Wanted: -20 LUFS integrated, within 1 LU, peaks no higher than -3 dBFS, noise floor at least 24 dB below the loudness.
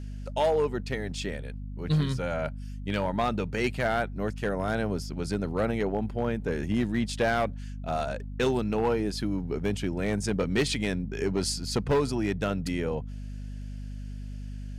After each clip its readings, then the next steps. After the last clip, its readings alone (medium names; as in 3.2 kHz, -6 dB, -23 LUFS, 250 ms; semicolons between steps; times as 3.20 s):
clipped samples 0.8%; clipping level -19.0 dBFS; hum 50 Hz; highest harmonic 250 Hz; hum level -34 dBFS; loudness -29.0 LUFS; peak level -19.0 dBFS; loudness target -20.0 LUFS
-> clip repair -19 dBFS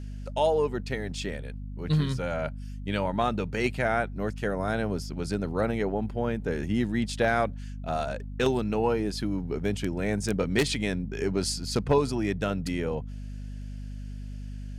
clipped samples 0.0%; hum 50 Hz; highest harmonic 250 Hz; hum level -34 dBFS
-> hum notches 50/100/150/200/250 Hz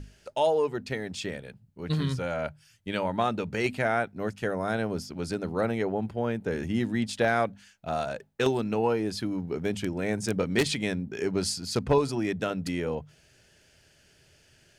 hum not found; loudness -29.5 LUFS; peak level -9.5 dBFS; loudness target -20.0 LUFS
-> trim +9.5 dB; peak limiter -3 dBFS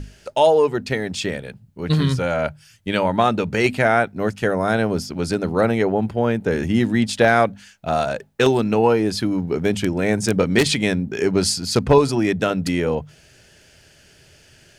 loudness -20.0 LUFS; peak level -3.0 dBFS; noise floor -52 dBFS